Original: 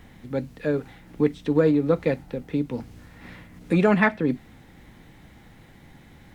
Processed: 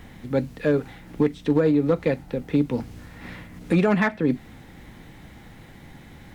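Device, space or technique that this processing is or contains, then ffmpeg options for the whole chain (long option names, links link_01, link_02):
limiter into clipper: -af "alimiter=limit=-14dB:level=0:latency=1:release=434,asoftclip=type=hard:threshold=-16dB,volume=4.5dB"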